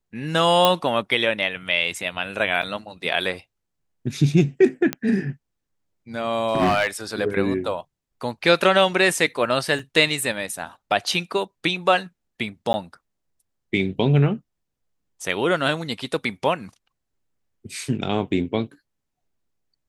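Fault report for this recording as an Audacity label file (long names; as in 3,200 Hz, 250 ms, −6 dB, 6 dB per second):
0.650000	0.650000	click −2 dBFS
2.620000	2.630000	drop-out 7.2 ms
4.930000	4.930000	click −8 dBFS
6.470000	6.880000	clipping −14 dBFS
9.790000	9.790000	drop-out 4 ms
12.730000	12.740000	drop-out 10 ms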